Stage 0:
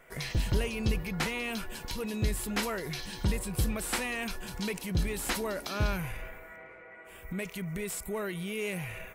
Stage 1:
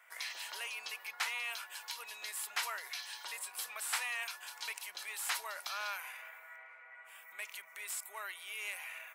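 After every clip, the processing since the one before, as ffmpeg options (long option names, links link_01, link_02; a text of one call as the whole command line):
ffmpeg -i in.wav -af "highpass=frequency=860:width=0.5412,highpass=frequency=860:width=1.3066,volume=-2.5dB" out.wav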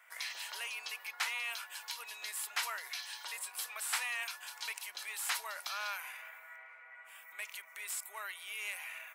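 ffmpeg -i in.wav -af "lowshelf=frequency=390:gain=-7.5,asoftclip=type=hard:threshold=-22dB,volume=1dB" out.wav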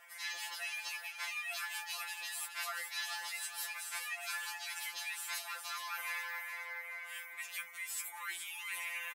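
ffmpeg -i in.wav -af "areverse,acompressor=threshold=-47dB:ratio=16,areverse,aecho=1:1:422|844|1266|1688|2110:0.376|0.162|0.0695|0.0299|0.0128,afftfilt=real='re*2.83*eq(mod(b,8),0)':imag='im*2.83*eq(mod(b,8),0)':win_size=2048:overlap=0.75,volume=11dB" out.wav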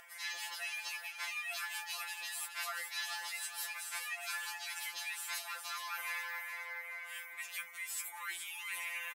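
ffmpeg -i in.wav -af "acompressor=mode=upward:threshold=-56dB:ratio=2.5" out.wav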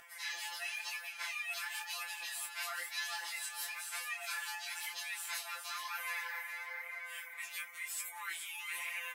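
ffmpeg -i in.wav -af "flanger=delay=15.5:depth=5.4:speed=0.99,volume=3dB" out.wav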